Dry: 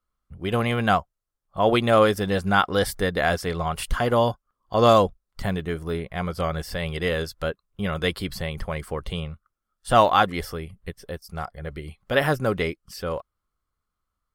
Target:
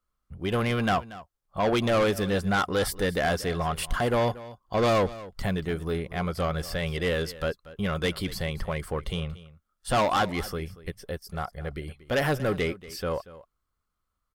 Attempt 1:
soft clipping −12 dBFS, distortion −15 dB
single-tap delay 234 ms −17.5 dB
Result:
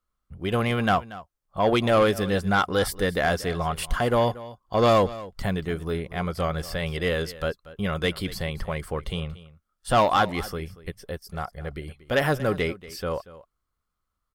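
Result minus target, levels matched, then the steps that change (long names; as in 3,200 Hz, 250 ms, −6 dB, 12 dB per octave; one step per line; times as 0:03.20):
soft clipping: distortion −7 dB
change: soft clipping −19 dBFS, distortion −9 dB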